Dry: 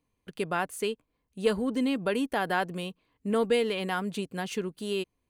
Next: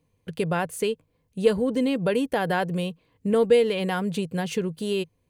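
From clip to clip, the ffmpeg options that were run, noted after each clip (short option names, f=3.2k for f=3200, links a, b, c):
-filter_complex "[0:a]equalizer=f=100:t=o:w=0.33:g=12,equalizer=f=160:t=o:w=0.33:g=11,equalizer=f=500:t=o:w=0.33:g=8,equalizer=f=1.25k:t=o:w=0.33:g=-4,asplit=2[a][b];[b]acompressor=threshold=-31dB:ratio=6,volume=-3dB[c];[a][c]amix=inputs=2:normalize=0"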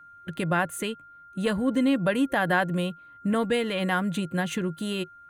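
-af "aeval=exprs='val(0)+0.00282*sin(2*PI*1400*n/s)':c=same,superequalizer=6b=1.41:7b=0.355:10b=1.58:11b=1.78:14b=0.447"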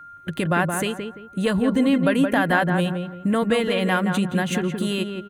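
-filter_complex "[0:a]asplit=2[a][b];[b]acompressor=threshold=-32dB:ratio=6,volume=1dB[c];[a][c]amix=inputs=2:normalize=0,asplit=2[d][e];[e]adelay=171,lowpass=f=1.7k:p=1,volume=-5dB,asplit=2[f][g];[g]adelay=171,lowpass=f=1.7k:p=1,volume=0.31,asplit=2[h][i];[i]adelay=171,lowpass=f=1.7k:p=1,volume=0.31,asplit=2[j][k];[k]adelay=171,lowpass=f=1.7k:p=1,volume=0.31[l];[d][f][h][j][l]amix=inputs=5:normalize=0,volume=1dB"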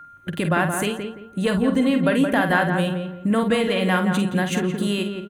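-filter_complex "[0:a]asplit=2[a][b];[b]adelay=49,volume=-8dB[c];[a][c]amix=inputs=2:normalize=0"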